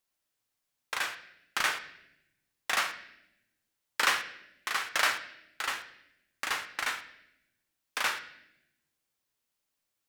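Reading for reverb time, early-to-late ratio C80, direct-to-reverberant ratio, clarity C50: 0.85 s, 14.5 dB, 7.0 dB, 12.0 dB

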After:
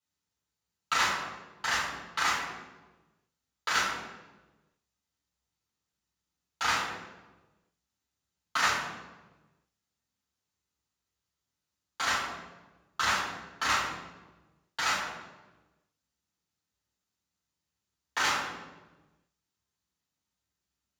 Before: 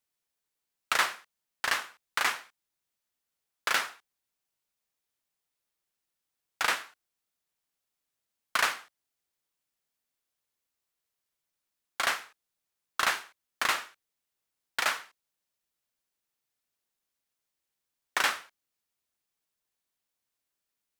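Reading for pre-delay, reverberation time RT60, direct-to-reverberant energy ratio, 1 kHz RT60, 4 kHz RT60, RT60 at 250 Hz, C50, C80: 3 ms, 1.2 s, −8.0 dB, 1.1 s, 0.80 s, 1.5 s, 2.5 dB, 5.0 dB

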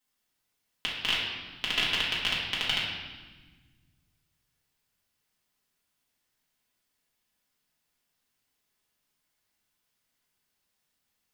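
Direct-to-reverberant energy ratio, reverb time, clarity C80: −6.5 dB, 1.3 s, 3.5 dB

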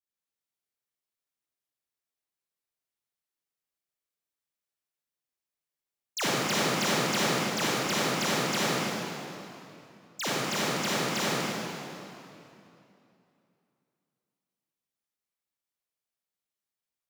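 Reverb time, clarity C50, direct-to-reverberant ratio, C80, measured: 2.8 s, −7.0 dB, −9.0 dB, −4.0 dB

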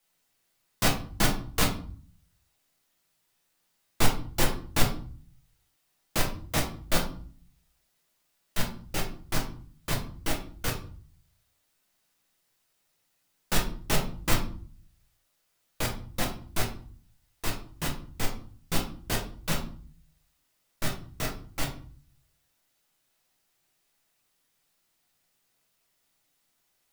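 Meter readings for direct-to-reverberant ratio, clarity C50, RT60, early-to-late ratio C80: −1.0 dB, 9.0 dB, 0.45 s, 13.5 dB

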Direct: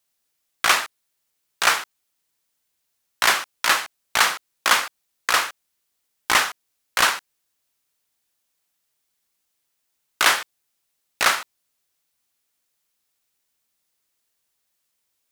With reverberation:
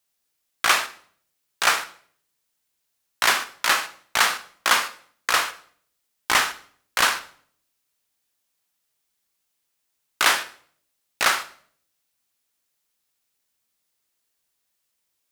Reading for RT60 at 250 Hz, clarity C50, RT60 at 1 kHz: 0.70 s, 14.5 dB, 0.50 s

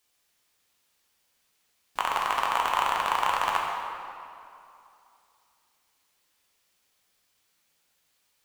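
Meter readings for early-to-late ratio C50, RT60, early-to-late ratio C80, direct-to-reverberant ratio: 1.0 dB, 2.7 s, 2.5 dB, −1.0 dB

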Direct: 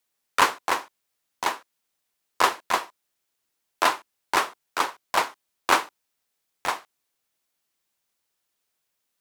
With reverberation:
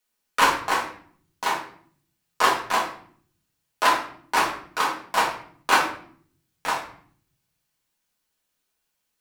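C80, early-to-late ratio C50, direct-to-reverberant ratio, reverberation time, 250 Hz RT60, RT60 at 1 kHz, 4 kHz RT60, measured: 11.0 dB, 6.5 dB, −4.0 dB, 0.55 s, 0.90 s, 0.50 s, 0.45 s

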